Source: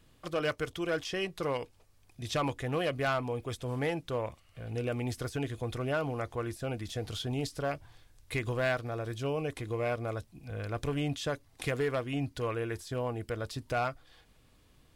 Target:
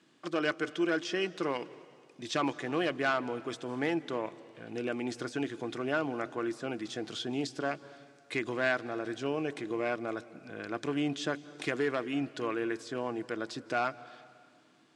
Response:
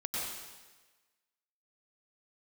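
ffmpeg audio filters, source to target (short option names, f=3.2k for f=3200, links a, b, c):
-filter_complex "[0:a]highpass=f=180:w=0.5412,highpass=f=180:w=1.3066,equalizer=f=330:t=q:w=4:g=7,equalizer=f=510:t=q:w=4:g=-5,equalizer=f=1.6k:t=q:w=4:g=4,lowpass=f=8k:w=0.5412,lowpass=f=8k:w=1.3066,asplit=2[a][b];[1:a]atrim=start_sample=2205,asetrate=26901,aresample=44100,lowshelf=f=160:g=9.5[c];[b][c]afir=irnorm=-1:irlink=0,volume=-25.5dB[d];[a][d]amix=inputs=2:normalize=0"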